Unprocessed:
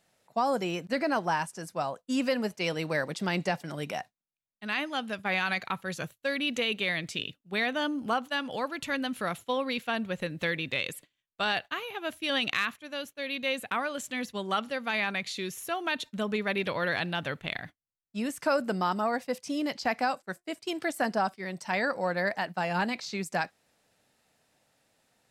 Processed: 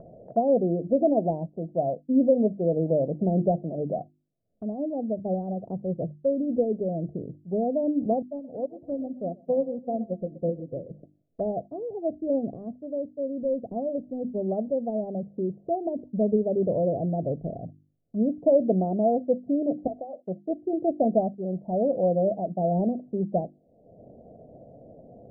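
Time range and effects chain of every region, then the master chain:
8.22–10.91 s: two-band feedback delay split 310 Hz, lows 170 ms, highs 124 ms, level -11 dB + upward expansion 2.5:1, over -45 dBFS
13.42–14.42 s: self-modulated delay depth 0.1 ms + low-pass 1.2 kHz 6 dB/octave
19.87–20.27 s: high-pass 460 Hz + compression 3:1, threshold -37 dBFS
whole clip: Chebyshev low-pass 690 Hz, order 6; hum notches 50/100/150/200/250/300/350 Hz; upward compressor, threshold -41 dBFS; trim +9 dB

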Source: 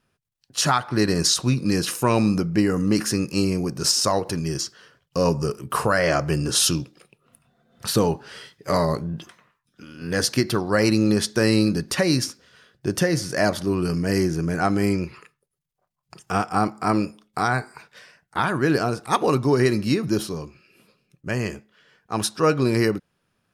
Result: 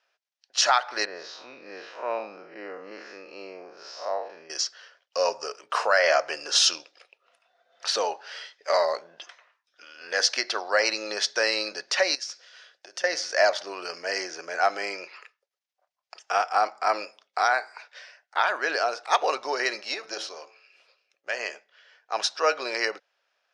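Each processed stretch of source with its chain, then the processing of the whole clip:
1.05–4.50 s: spectral blur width 129 ms + tape spacing loss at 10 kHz 40 dB
12.15–13.04 s: compression 16:1, threshold -33 dBFS + treble shelf 4.2 kHz +7.5 dB
19.80–21.39 s: partial rectifier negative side -3 dB + bass shelf 180 Hz -6.5 dB + de-hum 110.2 Hz, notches 14
whole clip: elliptic band-pass 600–5900 Hz, stop band 80 dB; peaking EQ 1.1 kHz -4.5 dB 0.53 oct; trim +2.5 dB

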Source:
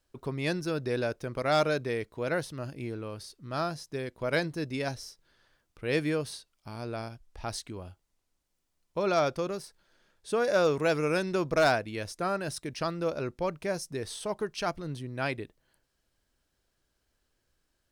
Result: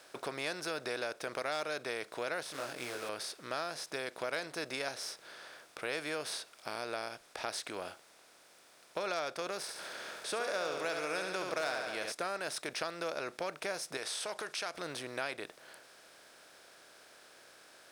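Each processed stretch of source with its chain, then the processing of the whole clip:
2.43–3.09 s: short-mantissa float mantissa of 2-bit + detune thickener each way 18 cents
9.62–12.12 s: upward compressor, threshold -44 dBFS + flutter echo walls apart 11.9 m, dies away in 0.55 s
13.97–14.75 s: low-pass 9.9 kHz + tilt EQ +2.5 dB/octave + compression 2:1, threshold -41 dBFS
whole clip: spectral levelling over time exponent 0.6; high-pass 1 kHz 6 dB/octave; compression 3:1, threshold -35 dBFS

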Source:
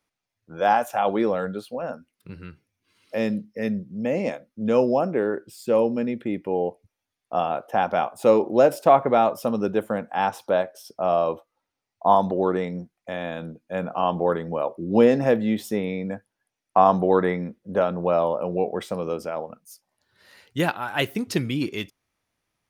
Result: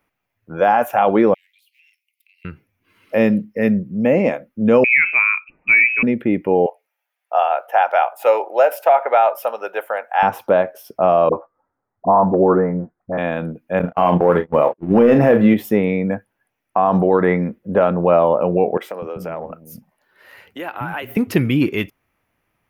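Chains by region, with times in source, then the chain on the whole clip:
1.34–2.45 s: partial rectifier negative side -3 dB + steep high-pass 2.1 kHz 96 dB/octave + compression 10:1, threshold -59 dBFS
4.84–6.03 s: high-pass 300 Hz 6 dB/octave + short-mantissa float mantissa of 4-bit + frequency inversion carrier 2.8 kHz
6.66–10.23 s: high-pass 620 Hz 24 dB/octave + band-stop 1.1 kHz, Q 6.6
11.29–13.18 s: steep low-pass 1.6 kHz + phase dispersion highs, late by 43 ms, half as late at 570 Hz
13.79–15.54 s: waveshaping leveller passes 1 + gate -25 dBFS, range -37 dB + doubling 34 ms -9 dB
18.77–21.17 s: compression 10:1, threshold -31 dBFS + bands offset in time highs, lows 250 ms, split 270 Hz
whole clip: high-order bell 5.8 kHz -12.5 dB; loudness maximiser +13 dB; trim -3.5 dB

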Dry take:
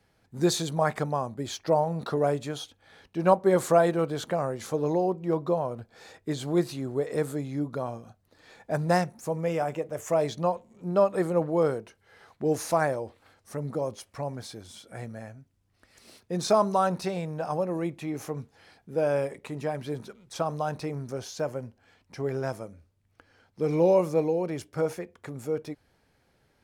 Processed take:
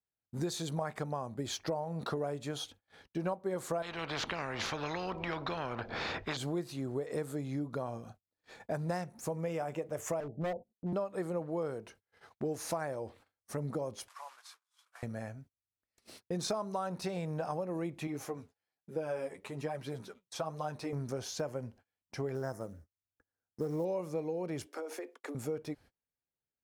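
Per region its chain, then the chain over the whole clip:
3.82–6.37 s: distance through air 270 m + spectrum-flattening compressor 4:1
10.20–10.93 s: gate -50 dBFS, range -23 dB + steep low-pass 820 Hz 96 dB/octave + hard clipper -28 dBFS
14.08–15.03 s: one-bit delta coder 64 kbps, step -40.5 dBFS + ladder high-pass 980 Hz, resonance 60%
18.07–20.93 s: peaking EQ 75 Hz -4.5 dB 2.8 oct + flange 1.2 Hz, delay 4.9 ms, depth 7.2 ms, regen +19%
22.35–23.85 s: Chebyshev band-stop 1.9–5.3 kHz, order 3 + short-mantissa float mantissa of 4-bit
24.66–25.35 s: steep high-pass 260 Hz 72 dB/octave + compression 12:1, threshold -36 dBFS
whole clip: gate -53 dBFS, range -33 dB; compression 6:1, threshold -33 dBFS

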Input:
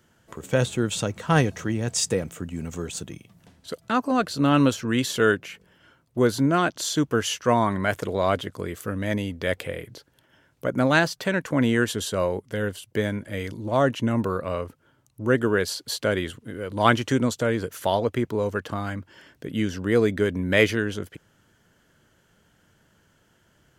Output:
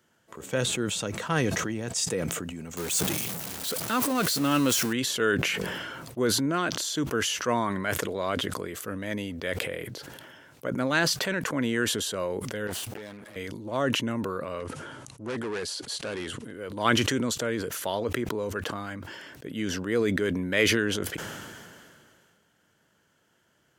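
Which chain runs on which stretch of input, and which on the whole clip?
2.77–4.93 s: jump at every zero crossing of -28.5 dBFS + treble shelf 6 kHz +11 dB
12.67–13.36 s: comb filter that takes the minimum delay 9.6 ms + bass shelf 210 Hz -5.5 dB + compression 2:1, threshold -46 dBFS
14.60–16.56 s: hard clipper -23.5 dBFS + careless resampling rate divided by 2×, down none, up filtered
whole clip: high-pass 230 Hz 6 dB/octave; dynamic bell 740 Hz, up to -5 dB, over -36 dBFS, Q 2; decay stretcher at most 26 dB/s; trim -4 dB

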